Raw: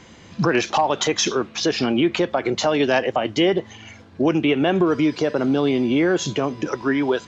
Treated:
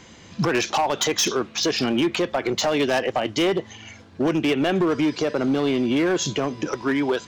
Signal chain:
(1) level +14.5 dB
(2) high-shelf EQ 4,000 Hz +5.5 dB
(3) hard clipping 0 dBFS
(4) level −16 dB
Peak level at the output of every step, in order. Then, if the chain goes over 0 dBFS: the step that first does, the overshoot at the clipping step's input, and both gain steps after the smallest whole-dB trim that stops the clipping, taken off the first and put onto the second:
+7.0, +9.0, 0.0, −16.0 dBFS
step 1, 9.0 dB
step 1 +5.5 dB, step 4 −7 dB

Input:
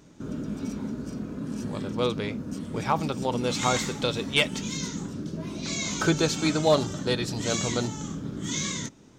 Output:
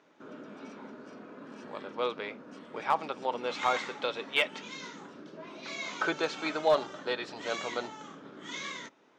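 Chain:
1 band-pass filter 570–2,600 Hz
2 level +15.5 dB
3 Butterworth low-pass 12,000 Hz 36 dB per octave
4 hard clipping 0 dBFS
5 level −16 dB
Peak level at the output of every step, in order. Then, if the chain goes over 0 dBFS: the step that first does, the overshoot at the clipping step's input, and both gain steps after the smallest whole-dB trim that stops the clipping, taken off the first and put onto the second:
−11.0, +4.5, +4.5, 0.0, −16.0 dBFS
step 2, 4.5 dB
step 2 +10.5 dB, step 5 −11 dB

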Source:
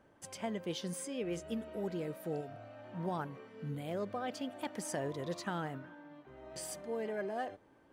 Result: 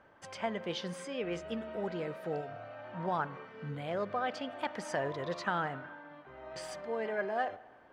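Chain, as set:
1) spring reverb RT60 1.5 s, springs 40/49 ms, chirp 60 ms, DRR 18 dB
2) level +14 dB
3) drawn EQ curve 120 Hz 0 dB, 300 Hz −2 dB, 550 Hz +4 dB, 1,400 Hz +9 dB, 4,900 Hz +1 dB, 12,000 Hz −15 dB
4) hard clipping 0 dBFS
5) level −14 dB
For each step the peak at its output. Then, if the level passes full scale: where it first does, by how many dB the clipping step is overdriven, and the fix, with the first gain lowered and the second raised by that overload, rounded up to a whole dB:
−25.0, −11.0, −5.0, −5.0, −19.0 dBFS
no step passes full scale

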